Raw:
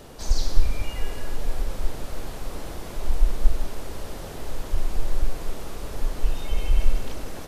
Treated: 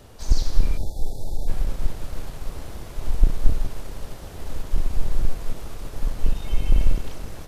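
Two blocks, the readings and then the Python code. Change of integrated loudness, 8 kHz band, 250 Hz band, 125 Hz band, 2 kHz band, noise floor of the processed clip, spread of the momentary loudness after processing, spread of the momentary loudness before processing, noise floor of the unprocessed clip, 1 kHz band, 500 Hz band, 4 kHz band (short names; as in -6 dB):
+1.5 dB, n/a, +1.5 dB, +3.0 dB, -3.5 dB, -39 dBFS, 13 LU, 10 LU, -37 dBFS, -3.0 dB, -2.5 dB, -2.5 dB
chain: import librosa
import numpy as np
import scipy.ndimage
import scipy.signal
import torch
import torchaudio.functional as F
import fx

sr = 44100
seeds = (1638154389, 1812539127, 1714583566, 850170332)

p1 = fx.octave_divider(x, sr, octaves=1, level_db=3.0)
p2 = fx.low_shelf(p1, sr, hz=380.0, db=-5.0)
p3 = np.sign(p2) * np.maximum(np.abs(p2) - 10.0 ** (-33.5 / 20.0), 0.0)
p4 = p2 + (p3 * 10.0 ** (-9.0 / 20.0))
p5 = fx.low_shelf(p4, sr, hz=91.0, db=8.0)
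p6 = fx.spec_erase(p5, sr, start_s=0.77, length_s=0.71, low_hz=910.0, high_hz=3400.0)
y = p6 * 10.0 ** (-4.0 / 20.0)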